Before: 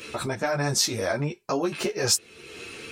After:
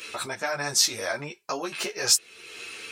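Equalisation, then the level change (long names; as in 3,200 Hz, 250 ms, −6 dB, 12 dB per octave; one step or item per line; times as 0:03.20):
tilt shelving filter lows −4.5 dB, about 720 Hz
low-shelf EQ 300 Hz −8 dB
−2.0 dB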